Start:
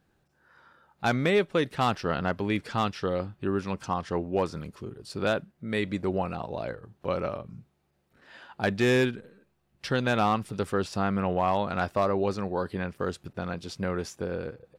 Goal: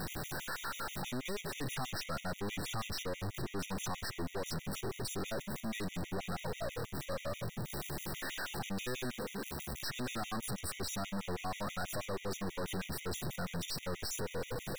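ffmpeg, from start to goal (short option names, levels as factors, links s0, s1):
-af "aeval=exprs='val(0)+0.5*0.0224*sgn(val(0))':c=same,crystalizer=i=5.5:c=0,aeval=exprs='(tanh(100*val(0)+0.6)-tanh(0.6))/100':c=same,areverse,acompressor=mode=upward:threshold=0.00708:ratio=2.5,areverse,afftfilt=real='re*gt(sin(2*PI*6.2*pts/sr)*(1-2*mod(floor(b*sr/1024/1900),2)),0)':imag='im*gt(sin(2*PI*6.2*pts/sr)*(1-2*mod(floor(b*sr/1024/1900),2)),0)':win_size=1024:overlap=0.75,volume=1.58"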